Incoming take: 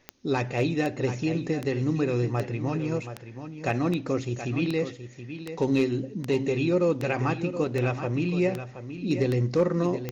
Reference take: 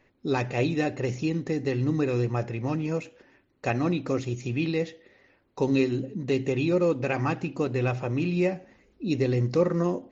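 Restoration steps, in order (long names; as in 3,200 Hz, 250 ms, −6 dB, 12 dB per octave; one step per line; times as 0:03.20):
clipped peaks rebuilt −15 dBFS
click removal
downward expander −32 dBFS, range −21 dB
echo removal 725 ms −10.5 dB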